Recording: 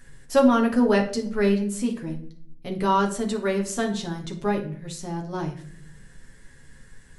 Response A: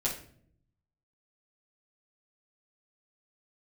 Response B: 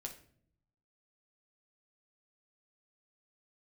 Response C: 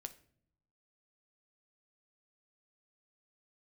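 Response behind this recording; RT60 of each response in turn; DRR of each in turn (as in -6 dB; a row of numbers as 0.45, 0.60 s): B; 0.55 s, 0.60 s, not exponential; -8.0, 1.0, 8.0 dB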